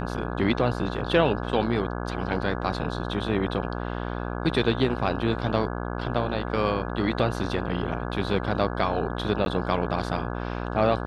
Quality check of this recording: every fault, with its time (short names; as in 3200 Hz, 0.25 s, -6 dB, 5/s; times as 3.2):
buzz 60 Hz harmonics 28 -31 dBFS
9.45–9.46 gap